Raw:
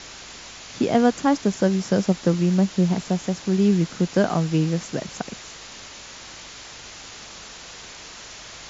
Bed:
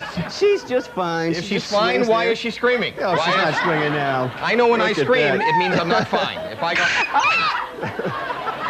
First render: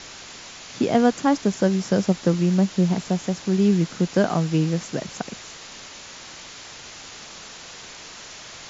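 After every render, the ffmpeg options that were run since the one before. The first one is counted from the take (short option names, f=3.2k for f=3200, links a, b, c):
-af "bandreject=f=50:t=h:w=4,bandreject=f=100:t=h:w=4"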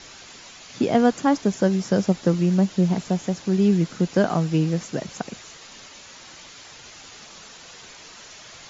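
-af "afftdn=nr=6:nf=-41"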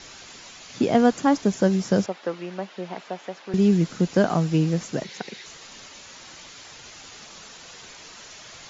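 -filter_complex "[0:a]asettb=1/sr,asplit=3[a][b][c];[a]atrim=end=2.064[d];[b]atrim=start=2.06:end=3.54,asetpts=PTS-STARTPTS,afade=t=in:d=0.004:c=qsin,afade=t=out:st=1.476:d=0.004:c=qsin,highpass=560,lowpass=3.1k[e];[c]atrim=start=3.536[f];[d][e]acrossfade=d=0.004:c1=hsin:c2=qsin[g];[g][f]acrossfade=d=0.004:c1=qsin:c2=hsin,asettb=1/sr,asplit=3[h][i][j];[h]atrim=end=5.044[k];[i]atrim=start=5.04:end=5.46,asetpts=PTS-STARTPTS,afade=t=in:d=0.004:c=qsin,afade=t=out:st=0.416:d=0.004:c=qsin,highpass=210,equalizer=f=270:t=q:w=4:g=-8,equalizer=f=390:t=q:w=4:g=4,equalizer=f=650:t=q:w=4:g=-9,equalizer=f=1.2k:t=q:w=4:g=-8,equalizer=f=2k:t=q:w=4:g=8,equalizer=f=3.9k:t=q:w=4:g=6,lowpass=f=6k:w=0.5412,lowpass=f=6k:w=1.3066[l];[j]atrim=start=5.456[m];[k][l]acrossfade=d=0.004:c1=hsin:c2=qsin[n];[n][m]acrossfade=d=0.004:c1=qsin:c2=hsin"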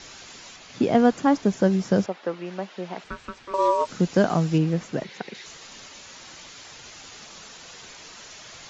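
-filter_complex "[0:a]asettb=1/sr,asplit=3[a][b][c];[a]atrim=end=0.564[d];[b]atrim=start=0.56:end=2.46,asetpts=PTS-STARTPTS,afade=t=in:d=0.004:c=qsin,afade=t=out:st=1.896:d=0.004:c=qsin,highshelf=f=5.1k:g=-8[e];[c]atrim=start=2.456[f];[d][e]acrossfade=d=0.004:c1=hsin:c2=qsin[g];[g][f]acrossfade=d=0.004:c1=qsin:c2=hsin,asettb=1/sr,asplit=3[h][i][j];[h]atrim=end=3.044[k];[i]atrim=start=3.04:end=3.88,asetpts=PTS-STARTPTS,afade=t=in:d=0.004:c=qsin,afade=t=out:st=0.836:d=0.004:c=qsin,aeval=exprs='val(0)*sin(2*PI*770*n/s)':c=same[l];[j]atrim=start=3.876[m];[k][l]acrossfade=d=0.004:c1=hsin:c2=qsin[n];[n][m]acrossfade=d=0.004:c1=qsin:c2=hsin,asettb=1/sr,asplit=3[o][p][q];[o]atrim=end=4.584[r];[p]atrim=start=4.58:end=5.35,asetpts=PTS-STARTPTS,afade=t=in:d=0.004:c=qsin,afade=t=out:st=0.766:d=0.004:c=qsin,bass=f=250:g=-1,treble=f=4k:g=-9[s];[q]atrim=start=5.346[t];[r][s]acrossfade=d=0.004:c1=hsin:c2=qsin[u];[u][t]acrossfade=d=0.004:c1=qsin:c2=hsin"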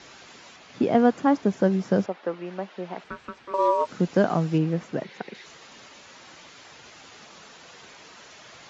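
-af "highpass=f=140:p=1,highshelf=f=4.2k:g=-11.5"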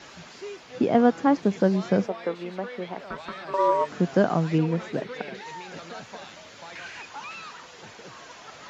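-filter_complex "[1:a]volume=-22dB[a];[0:a][a]amix=inputs=2:normalize=0"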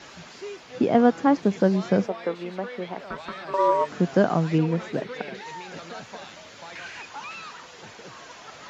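-af "volume=1dB"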